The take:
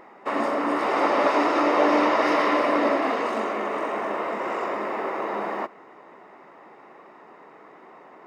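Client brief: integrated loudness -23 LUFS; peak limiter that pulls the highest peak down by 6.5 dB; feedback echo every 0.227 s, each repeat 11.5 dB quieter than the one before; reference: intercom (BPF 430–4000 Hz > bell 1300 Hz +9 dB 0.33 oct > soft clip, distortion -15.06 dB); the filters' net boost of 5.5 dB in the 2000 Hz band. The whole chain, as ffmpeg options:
-af "equalizer=f=2k:t=o:g=5,alimiter=limit=-13.5dB:level=0:latency=1,highpass=430,lowpass=4k,equalizer=f=1.3k:t=o:w=0.33:g=9,aecho=1:1:227|454|681:0.266|0.0718|0.0194,asoftclip=threshold=-17.5dB,volume=1dB"

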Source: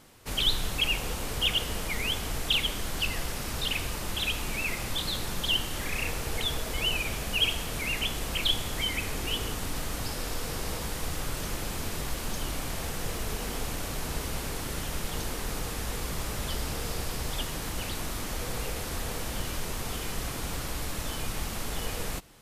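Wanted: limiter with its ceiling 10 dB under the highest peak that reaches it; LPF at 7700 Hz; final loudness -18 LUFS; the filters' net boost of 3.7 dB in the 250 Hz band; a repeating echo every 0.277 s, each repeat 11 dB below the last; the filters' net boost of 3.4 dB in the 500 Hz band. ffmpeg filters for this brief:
-af "lowpass=7.7k,equalizer=f=250:t=o:g=4,equalizer=f=500:t=o:g=3,alimiter=limit=-22.5dB:level=0:latency=1,aecho=1:1:277|554|831:0.282|0.0789|0.0221,volume=15dB"

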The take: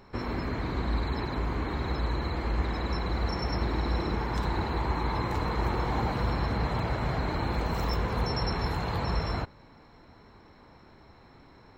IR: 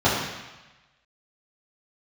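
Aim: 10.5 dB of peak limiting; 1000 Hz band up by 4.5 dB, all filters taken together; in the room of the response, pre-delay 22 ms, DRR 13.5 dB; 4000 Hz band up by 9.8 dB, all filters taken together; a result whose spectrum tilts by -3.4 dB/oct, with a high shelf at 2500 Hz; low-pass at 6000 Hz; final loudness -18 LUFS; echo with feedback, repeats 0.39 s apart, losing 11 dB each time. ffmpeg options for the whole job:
-filter_complex "[0:a]lowpass=6k,equalizer=f=1k:t=o:g=4,highshelf=f=2.5k:g=6.5,equalizer=f=4k:t=o:g=7,alimiter=level_in=1dB:limit=-24dB:level=0:latency=1,volume=-1dB,aecho=1:1:390|780|1170:0.282|0.0789|0.0221,asplit=2[a][b];[1:a]atrim=start_sample=2205,adelay=22[c];[b][c]afir=irnorm=-1:irlink=0,volume=-33dB[d];[a][d]amix=inputs=2:normalize=0,volume=15dB"

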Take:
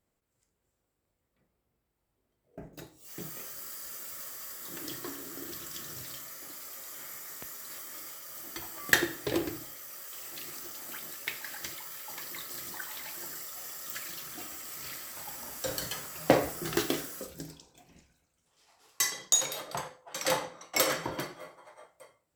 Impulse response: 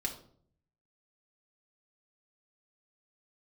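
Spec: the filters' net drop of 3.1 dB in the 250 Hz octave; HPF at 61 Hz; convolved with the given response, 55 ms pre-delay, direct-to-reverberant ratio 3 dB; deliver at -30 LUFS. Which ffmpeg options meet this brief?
-filter_complex "[0:a]highpass=61,equalizer=f=250:t=o:g=-4.5,asplit=2[a][b];[1:a]atrim=start_sample=2205,adelay=55[c];[b][c]afir=irnorm=-1:irlink=0,volume=-4.5dB[d];[a][d]amix=inputs=2:normalize=0,volume=2.5dB"

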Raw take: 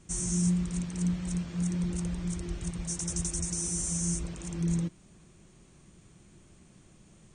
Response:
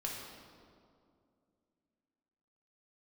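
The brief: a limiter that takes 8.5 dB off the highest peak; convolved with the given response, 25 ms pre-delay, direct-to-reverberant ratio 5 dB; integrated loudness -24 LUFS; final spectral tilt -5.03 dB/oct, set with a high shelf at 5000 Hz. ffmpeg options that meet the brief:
-filter_complex "[0:a]highshelf=f=5k:g=-6,alimiter=level_in=2dB:limit=-24dB:level=0:latency=1,volume=-2dB,asplit=2[a][b];[1:a]atrim=start_sample=2205,adelay=25[c];[b][c]afir=irnorm=-1:irlink=0,volume=-6.5dB[d];[a][d]amix=inputs=2:normalize=0,volume=11dB"

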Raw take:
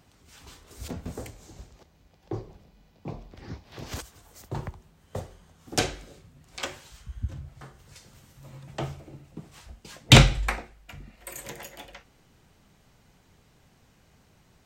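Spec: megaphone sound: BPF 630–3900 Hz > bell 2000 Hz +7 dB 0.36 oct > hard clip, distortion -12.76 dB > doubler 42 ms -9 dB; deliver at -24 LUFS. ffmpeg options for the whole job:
-filter_complex "[0:a]highpass=630,lowpass=3.9k,equalizer=f=2k:t=o:w=0.36:g=7,asoftclip=type=hard:threshold=-11dB,asplit=2[a][b];[b]adelay=42,volume=-9dB[c];[a][c]amix=inputs=2:normalize=0,volume=4.5dB"

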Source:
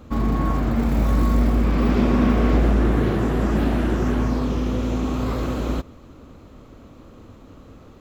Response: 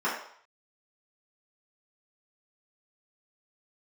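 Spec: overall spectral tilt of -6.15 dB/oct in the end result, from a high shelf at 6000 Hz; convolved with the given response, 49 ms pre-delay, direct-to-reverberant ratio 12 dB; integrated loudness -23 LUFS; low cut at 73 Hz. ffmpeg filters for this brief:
-filter_complex "[0:a]highpass=73,highshelf=f=6k:g=5,asplit=2[a][b];[1:a]atrim=start_sample=2205,adelay=49[c];[b][c]afir=irnorm=-1:irlink=0,volume=-24.5dB[d];[a][d]amix=inputs=2:normalize=0,volume=-0.5dB"

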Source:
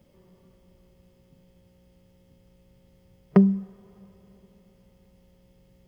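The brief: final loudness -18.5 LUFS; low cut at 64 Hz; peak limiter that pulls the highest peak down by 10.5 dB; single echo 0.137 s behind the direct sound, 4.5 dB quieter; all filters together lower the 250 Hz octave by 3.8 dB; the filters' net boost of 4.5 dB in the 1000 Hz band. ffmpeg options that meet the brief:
-af "highpass=64,equalizer=f=250:t=o:g=-6,equalizer=f=1k:t=o:g=6,alimiter=limit=-16dB:level=0:latency=1,aecho=1:1:137:0.596,volume=10dB"

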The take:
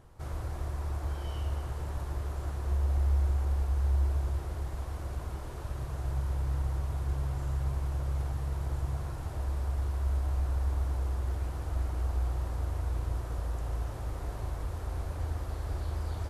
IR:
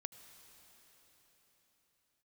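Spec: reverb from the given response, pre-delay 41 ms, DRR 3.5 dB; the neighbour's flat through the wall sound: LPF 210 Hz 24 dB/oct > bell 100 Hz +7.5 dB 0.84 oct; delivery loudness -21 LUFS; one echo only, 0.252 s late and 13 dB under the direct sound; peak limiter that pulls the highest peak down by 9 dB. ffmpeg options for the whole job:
-filter_complex "[0:a]alimiter=level_in=4.5dB:limit=-24dB:level=0:latency=1,volume=-4.5dB,aecho=1:1:252:0.224,asplit=2[a][b];[1:a]atrim=start_sample=2205,adelay=41[c];[b][c]afir=irnorm=-1:irlink=0,volume=0.5dB[d];[a][d]amix=inputs=2:normalize=0,lowpass=f=210:w=0.5412,lowpass=f=210:w=1.3066,equalizer=f=100:t=o:w=0.84:g=7.5,volume=11.5dB"

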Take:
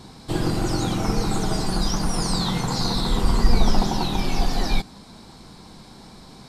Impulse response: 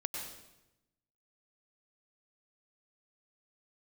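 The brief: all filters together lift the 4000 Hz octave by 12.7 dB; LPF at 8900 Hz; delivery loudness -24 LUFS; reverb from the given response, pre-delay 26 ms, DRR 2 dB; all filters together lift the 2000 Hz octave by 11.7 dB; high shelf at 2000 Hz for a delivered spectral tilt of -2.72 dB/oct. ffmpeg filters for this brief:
-filter_complex "[0:a]lowpass=8.9k,highshelf=f=2k:g=8,equalizer=f=2k:t=o:g=8.5,equalizer=f=4k:t=o:g=5.5,asplit=2[a][b];[1:a]atrim=start_sample=2205,adelay=26[c];[b][c]afir=irnorm=-1:irlink=0,volume=-3.5dB[d];[a][d]amix=inputs=2:normalize=0,volume=-8.5dB"

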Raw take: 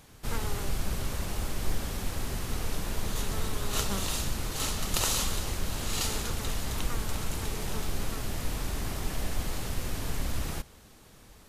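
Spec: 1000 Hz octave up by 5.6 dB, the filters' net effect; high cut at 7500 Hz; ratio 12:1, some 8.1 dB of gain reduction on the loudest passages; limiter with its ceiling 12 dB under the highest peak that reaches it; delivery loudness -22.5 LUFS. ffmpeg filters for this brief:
-af "lowpass=7.5k,equalizer=f=1k:t=o:g=7,acompressor=threshold=-30dB:ratio=12,volume=18.5dB,alimiter=limit=-11dB:level=0:latency=1"

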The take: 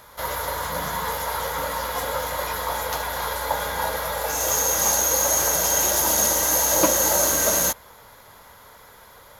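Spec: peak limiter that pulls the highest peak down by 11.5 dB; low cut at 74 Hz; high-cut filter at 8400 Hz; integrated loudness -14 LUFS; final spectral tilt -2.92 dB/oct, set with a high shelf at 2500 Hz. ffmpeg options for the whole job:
-af "highpass=74,lowpass=8.4k,highshelf=f=2.5k:g=-6,volume=13dB,alimiter=limit=-4dB:level=0:latency=1"

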